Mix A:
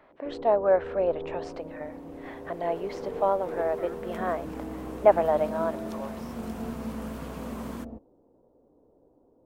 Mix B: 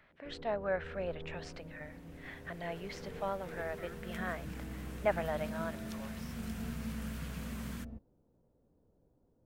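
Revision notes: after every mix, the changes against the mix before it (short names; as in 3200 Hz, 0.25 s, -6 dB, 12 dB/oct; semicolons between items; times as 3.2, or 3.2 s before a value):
master: add band shelf 540 Hz -13 dB 2.5 oct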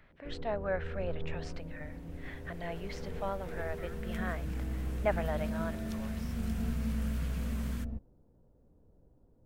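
first sound +3.5 dB; master: add low shelf 82 Hz +10.5 dB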